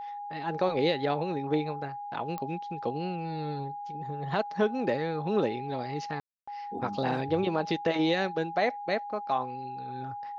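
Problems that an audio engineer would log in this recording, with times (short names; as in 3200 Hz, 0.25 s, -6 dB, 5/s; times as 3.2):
tone 820 Hz -36 dBFS
2.38 pop -23 dBFS
6.2–6.47 gap 0.275 s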